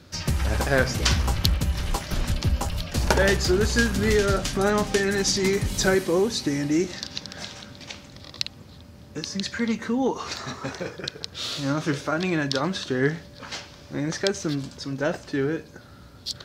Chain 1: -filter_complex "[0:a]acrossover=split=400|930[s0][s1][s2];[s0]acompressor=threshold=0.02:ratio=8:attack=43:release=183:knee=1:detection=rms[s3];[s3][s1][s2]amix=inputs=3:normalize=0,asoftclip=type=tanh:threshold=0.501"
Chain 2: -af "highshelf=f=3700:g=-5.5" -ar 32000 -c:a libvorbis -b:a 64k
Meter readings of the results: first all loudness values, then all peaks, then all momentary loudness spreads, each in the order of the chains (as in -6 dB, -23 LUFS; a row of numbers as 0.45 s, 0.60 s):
-28.0 LUFS, -25.5 LUFS; -7.0 dBFS, -6.0 dBFS; 13 LU, 15 LU